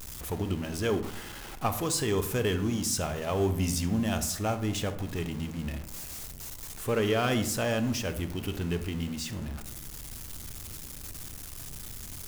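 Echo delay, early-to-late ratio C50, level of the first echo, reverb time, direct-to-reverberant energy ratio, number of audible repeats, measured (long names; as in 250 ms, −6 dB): no echo audible, 12.0 dB, no echo audible, 0.75 s, 8.5 dB, no echo audible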